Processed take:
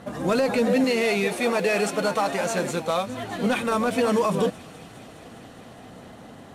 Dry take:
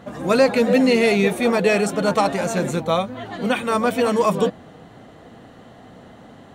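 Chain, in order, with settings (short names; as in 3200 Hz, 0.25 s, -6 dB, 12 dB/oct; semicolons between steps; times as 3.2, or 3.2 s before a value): CVSD 64 kbps; 0.84–3.07 low shelf 260 Hz -10.5 dB; limiter -13.5 dBFS, peak gain reduction 9 dB; thin delay 0.205 s, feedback 84%, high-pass 2400 Hz, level -17 dB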